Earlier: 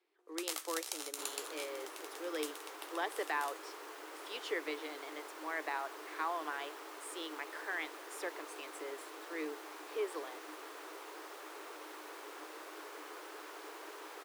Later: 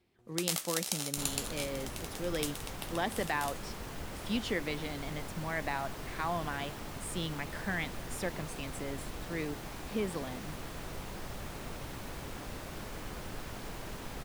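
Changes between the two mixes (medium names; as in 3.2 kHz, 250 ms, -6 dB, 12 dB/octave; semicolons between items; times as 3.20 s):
first sound: send on; master: remove rippled Chebyshev high-pass 300 Hz, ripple 6 dB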